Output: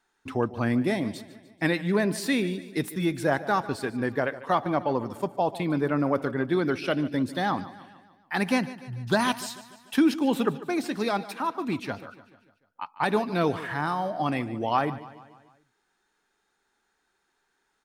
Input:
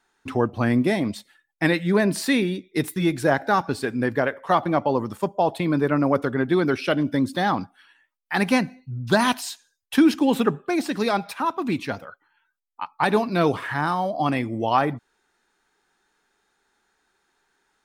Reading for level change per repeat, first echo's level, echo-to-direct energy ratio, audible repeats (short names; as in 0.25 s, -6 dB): -5.5 dB, -16.5 dB, -15.0 dB, 4